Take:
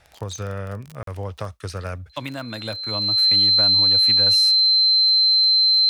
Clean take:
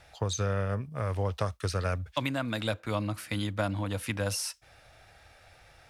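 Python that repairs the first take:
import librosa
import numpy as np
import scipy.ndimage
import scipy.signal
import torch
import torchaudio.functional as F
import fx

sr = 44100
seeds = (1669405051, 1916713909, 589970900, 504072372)

y = fx.fix_declick_ar(x, sr, threshold=6.5)
y = fx.notch(y, sr, hz=4100.0, q=30.0)
y = fx.fix_interpolate(y, sr, at_s=(1.03,), length_ms=43.0)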